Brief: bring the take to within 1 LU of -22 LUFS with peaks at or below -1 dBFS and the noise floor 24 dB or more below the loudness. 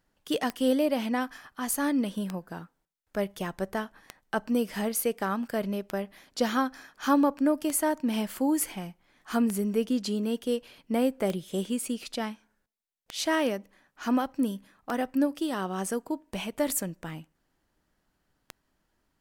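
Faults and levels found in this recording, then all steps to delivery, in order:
clicks 11; loudness -29.5 LUFS; peak -12.0 dBFS; loudness target -22.0 LUFS
-> de-click; gain +7.5 dB

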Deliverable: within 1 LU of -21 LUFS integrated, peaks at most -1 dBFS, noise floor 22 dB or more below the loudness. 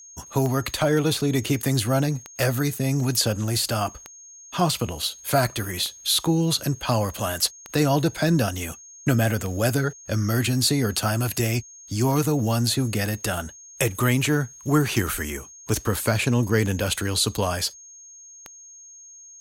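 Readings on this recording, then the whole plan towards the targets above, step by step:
clicks 11; steady tone 6500 Hz; tone level -43 dBFS; loudness -23.5 LUFS; peak -8.0 dBFS; loudness target -21.0 LUFS
-> de-click; notch 6500 Hz, Q 30; gain +2.5 dB

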